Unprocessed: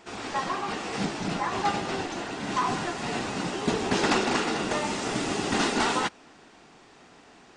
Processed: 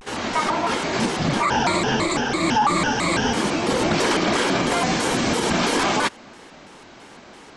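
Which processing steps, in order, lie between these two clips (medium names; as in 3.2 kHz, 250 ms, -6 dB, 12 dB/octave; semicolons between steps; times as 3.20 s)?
1.43–3.32 s: rippled EQ curve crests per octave 1.1, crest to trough 16 dB; peak limiter -20 dBFS, peak gain reduction 10 dB; vibrato with a chosen wave square 3 Hz, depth 250 cents; trim +9 dB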